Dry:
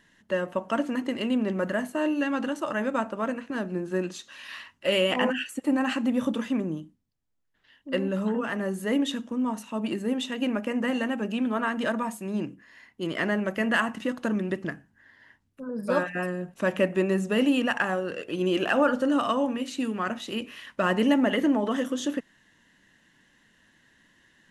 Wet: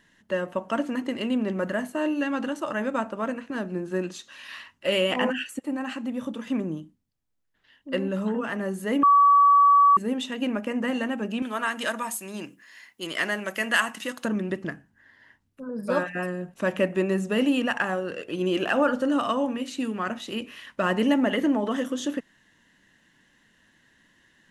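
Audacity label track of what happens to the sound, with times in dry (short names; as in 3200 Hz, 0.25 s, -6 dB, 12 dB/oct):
5.590000	6.470000	gain -5.5 dB
9.030000	9.970000	bleep 1140 Hz -13 dBFS
11.420000	14.250000	tilt +3.5 dB/oct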